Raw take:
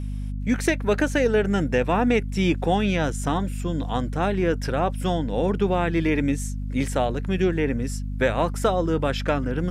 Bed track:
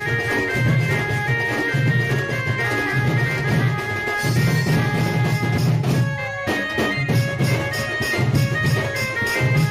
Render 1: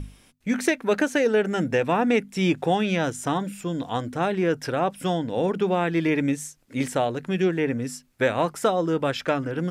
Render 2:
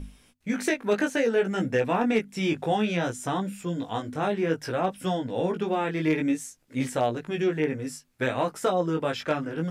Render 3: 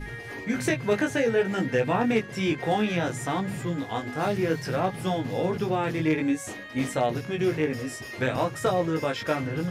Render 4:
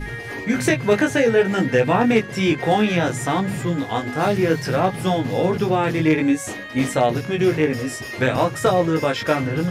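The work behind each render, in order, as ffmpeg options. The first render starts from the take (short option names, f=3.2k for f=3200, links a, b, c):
-af "bandreject=f=50:t=h:w=6,bandreject=f=100:t=h:w=6,bandreject=f=150:t=h:w=6,bandreject=f=200:t=h:w=6,bandreject=f=250:t=h:w=6"
-af "flanger=delay=15.5:depth=4.2:speed=0.59,asoftclip=type=hard:threshold=-14dB"
-filter_complex "[1:a]volume=-17dB[a];[0:a][a]amix=inputs=2:normalize=0"
-af "volume=7dB"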